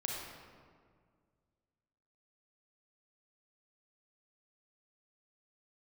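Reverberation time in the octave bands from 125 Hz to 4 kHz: 2.5 s, 2.3 s, 2.0 s, 1.8 s, 1.5 s, 1.1 s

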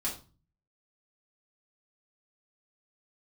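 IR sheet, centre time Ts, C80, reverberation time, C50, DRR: 24 ms, 14.5 dB, 0.35 s, 8.5 dB, -6.0 dB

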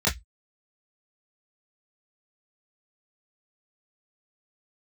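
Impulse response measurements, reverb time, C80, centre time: 0.10 s, 27.0 dB, 23 ms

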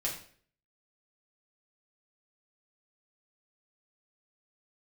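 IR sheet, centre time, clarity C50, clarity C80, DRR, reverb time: 27 ms, 7.0 dB, 10.5 dB, -4.5 dB, 0.50 s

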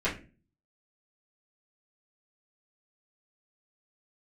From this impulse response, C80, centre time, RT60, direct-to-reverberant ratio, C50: 17.0 dB, 21 ms, 0.35 s, -10.5 dB, 11.0 dB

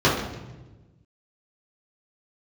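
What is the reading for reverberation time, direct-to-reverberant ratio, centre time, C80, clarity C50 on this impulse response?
1.2 s, -8.5 dB, 50 ms, 6.5 dB, 3.5 dB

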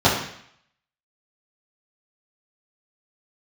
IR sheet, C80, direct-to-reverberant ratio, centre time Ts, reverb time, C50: 7.5 dB, -10.0 dB, 39 ms, 0.65 s, 4.5 dB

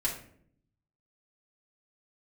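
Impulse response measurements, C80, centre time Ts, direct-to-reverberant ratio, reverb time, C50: 11.5 dB, 24 ms, -6.0 dB, 0.60 s, 7.0 dB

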